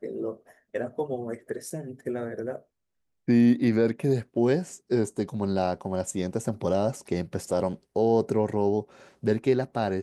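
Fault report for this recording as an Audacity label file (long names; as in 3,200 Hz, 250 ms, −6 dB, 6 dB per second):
1.700000	1.700000	drop-out 4.2 ms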